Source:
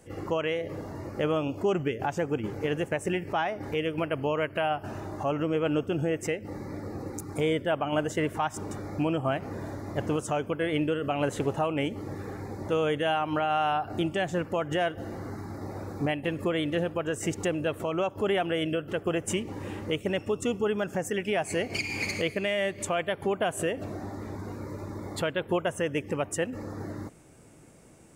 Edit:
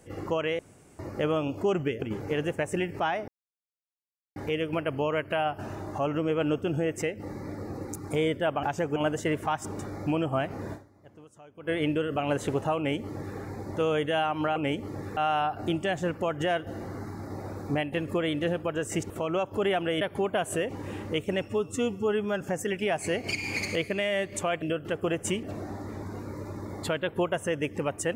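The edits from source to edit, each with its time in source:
0.59–0.99 room tone
2.02–2.35 move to 7.88
3.61 insert silence 1.08 s
9.65–10.61 dip -23 dB, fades 0.46 s exponential
11.69–12.3 copy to 13.48
17.41–17.74 cut
18.65–19.46 swap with 23.08–23.76
20.25–20.87 stretch 1.5×

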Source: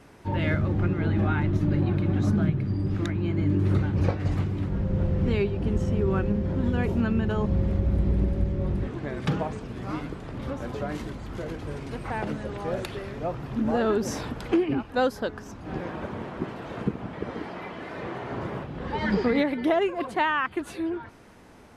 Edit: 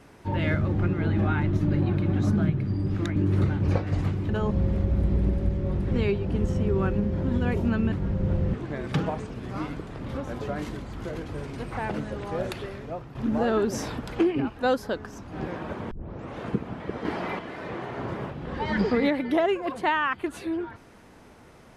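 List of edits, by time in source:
3.16–3.49 cut
4.62–5.23 swap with 7.24–8.86
12.92–13.48 fade out, to -9.5 dB
16.24 tape start 0.48 s
17.38–17.72 gain +6 dB

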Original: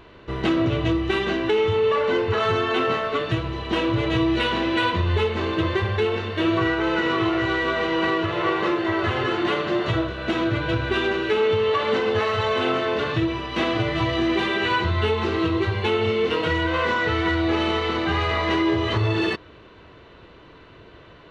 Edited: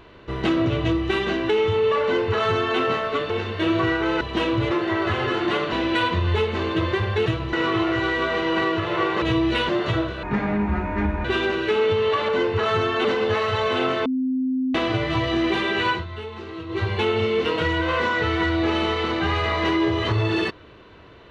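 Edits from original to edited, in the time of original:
2.03–2.79 copy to 11.9
3.3–3.57 swap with 6.08–6.99
4.07–4.54 swap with 8.68–9.69
10.23–10.86 speed 62%
12.91–13.6 bleep 259 Hz -20 dBFS
14.76–15.68 dip -12 dB, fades 0.14 s

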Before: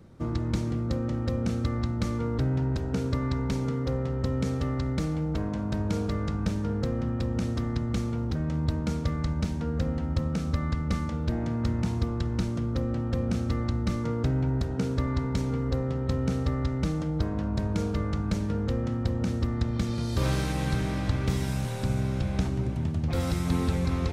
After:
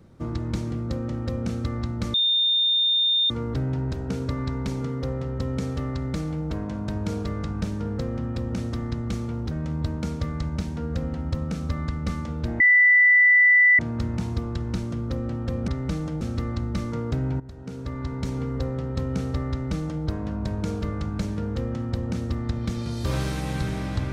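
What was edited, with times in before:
2.14 add tone 3630 Hz -18 dBFS 1.16 s
11.44 add tone 1980 Hz -12.5 dBFS 1.19 s
14.52–15.49 fade in, from -17.5 dB
16.62–17.15 copy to 13.33

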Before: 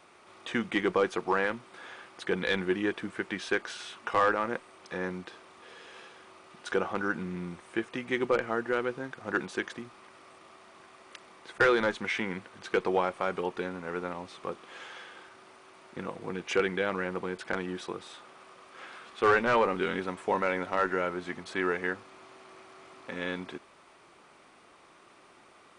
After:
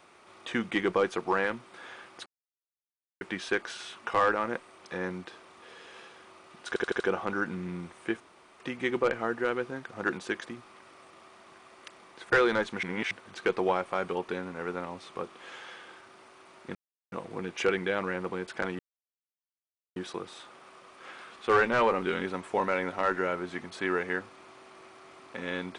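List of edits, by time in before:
2.26–3.21 mute
6.68 stutter 0.08 s, 5 plays
7.88 insert room tone 0.40 s
12.11–12.39 reverse
16.03 insert silence 0.37 s
17.7 insert silence 1.17 s

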